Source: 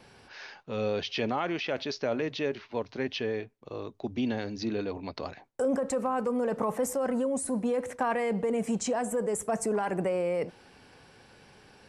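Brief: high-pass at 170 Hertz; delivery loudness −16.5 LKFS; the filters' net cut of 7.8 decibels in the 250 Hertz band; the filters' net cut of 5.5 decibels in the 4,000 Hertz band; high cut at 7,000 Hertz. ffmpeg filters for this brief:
ffmpeg -i in.wav -af "highpass=170,lowpass=7000,equalizer=frequency=250:width_type=o:gain=-8,equalizer=frequency=4000:width_type=o:gain=-7,volume=17.5dB" out.wav

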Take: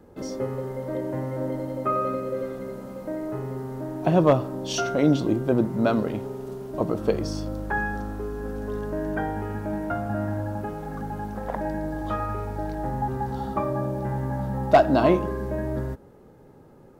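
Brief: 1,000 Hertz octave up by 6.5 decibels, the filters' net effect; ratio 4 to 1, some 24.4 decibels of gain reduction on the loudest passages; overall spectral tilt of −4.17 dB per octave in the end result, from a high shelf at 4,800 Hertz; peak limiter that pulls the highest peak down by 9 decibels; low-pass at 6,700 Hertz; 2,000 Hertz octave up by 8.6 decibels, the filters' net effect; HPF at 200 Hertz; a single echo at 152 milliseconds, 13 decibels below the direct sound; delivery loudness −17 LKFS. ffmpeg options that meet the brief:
ffmpeg -i in.wav -af "highpass=200,lowpass=6700,equalizer=frequency=1000:width_type=o:gain=7,equalizer=frequency=2000:width_type=o:gain=8,highshelf=frequency=4800:gain=4.5,acompressor=threshold=-37dB:ratio=4,alimiter=level_in=4dB:limit=-24dB:level=0:latency=1,volume=-4dB,aecho=1:1:152:0.224,volume=22dB" out.wav

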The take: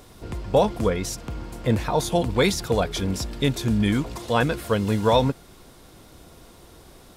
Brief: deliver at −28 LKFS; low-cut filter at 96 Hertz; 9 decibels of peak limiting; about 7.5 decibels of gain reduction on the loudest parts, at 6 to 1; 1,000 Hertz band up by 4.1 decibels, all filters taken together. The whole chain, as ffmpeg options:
ffmpeg -i in.wav -af "highpass=96,equalizer=frequency=1000:width_type=o:gain=5,acompressor=threshold=-20dB:ratio=6,volume=1.5dB,alimiter=limit=-16.5dB:level=0:latency=1" out.wav

